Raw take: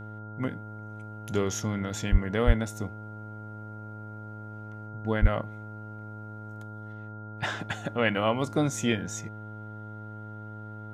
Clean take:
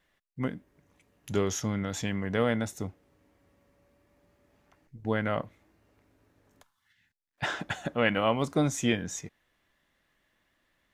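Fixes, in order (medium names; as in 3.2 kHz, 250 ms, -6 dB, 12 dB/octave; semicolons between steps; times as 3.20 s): de-hum 107.3 Hz, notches 9; band-stop 1.4 kHz, Q 30; 2.11–2.23 s: high-pass 140 Hz 24 dB/octave; 2.46–2.58 s: high-pass 140 Hz 24 dB/octave; 5.21–5.33 s: high-pass 140 Hz 24 dB/octave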